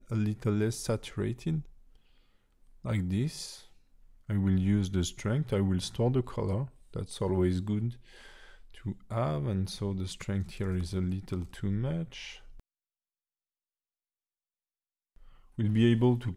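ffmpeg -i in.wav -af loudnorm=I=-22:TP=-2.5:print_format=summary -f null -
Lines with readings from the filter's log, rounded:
Input Integrated:    -31.0 LUFS
Input True Peak:     -13.4 dBTP
Input LRA:             5.3 LU
Input Threshold:     -42.1 LUFS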